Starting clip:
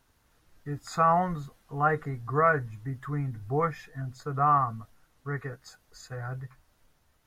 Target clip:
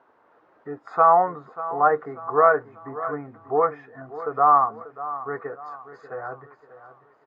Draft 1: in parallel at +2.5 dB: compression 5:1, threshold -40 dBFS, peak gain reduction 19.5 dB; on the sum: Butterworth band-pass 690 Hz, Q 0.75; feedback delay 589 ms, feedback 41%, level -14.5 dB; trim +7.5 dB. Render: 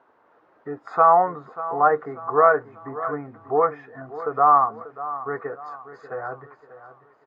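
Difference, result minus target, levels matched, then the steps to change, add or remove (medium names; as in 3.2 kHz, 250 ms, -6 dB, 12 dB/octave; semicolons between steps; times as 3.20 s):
compression: peak gain reduction -7 dB
change: compression 5:1, threshold -49 dBFS, peak gain reduction 26.5 dB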